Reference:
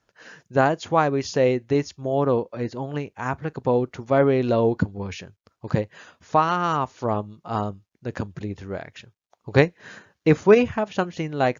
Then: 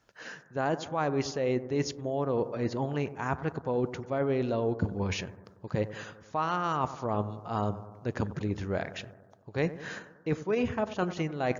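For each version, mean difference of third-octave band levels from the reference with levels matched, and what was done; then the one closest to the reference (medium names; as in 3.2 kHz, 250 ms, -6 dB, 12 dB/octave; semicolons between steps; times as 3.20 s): 5.5 dB: reverse; compression 10:1, threshold -28 dBFS, peak gain reduction 18.5 dB; reverse; bucket-brigade echo 94 ms, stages 1024, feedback 63%, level -14 dB; trim +2 dB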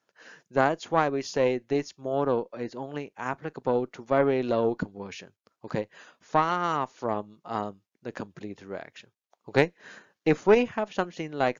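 2.0 dB: high-pass 210 Hz 12 dB/octave; valve stage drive 5 dB, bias 0.55; trim -2 dB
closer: second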